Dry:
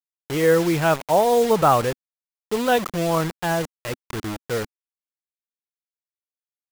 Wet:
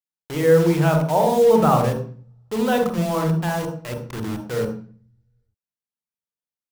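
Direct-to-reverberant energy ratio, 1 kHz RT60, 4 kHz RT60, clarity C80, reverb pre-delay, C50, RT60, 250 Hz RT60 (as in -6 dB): 3.5 dB, 0.45 s, 0.40 s, 11.0 dB, 40 ms, 6.5 dB, 0.40 s, 0.70 s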